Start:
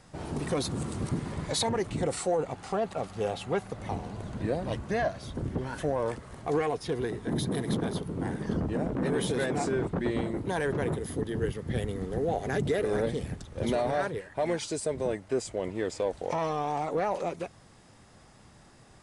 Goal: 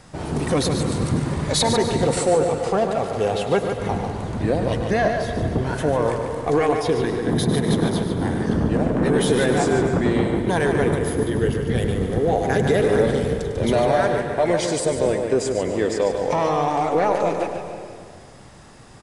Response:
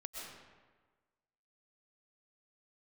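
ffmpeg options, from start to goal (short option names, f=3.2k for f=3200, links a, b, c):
-filter_complex "[0:a]asplit=2[a][b];[b]adelay=145.8,volume=-6dB,highshelf=f=4k:g=-3.28[c];[a][c]amix=inputs=2:normalize=0,asplit=2[d][e];[1:a]atrim=start_sample=2205,asetrate=32634,aresample=44100,adelay=101[f];[e][f]afir=irnorm=-1:irlink=0,volume=-8dB[g];[d][g]amix=inputs=2:normalize=0,volume=8.5dB"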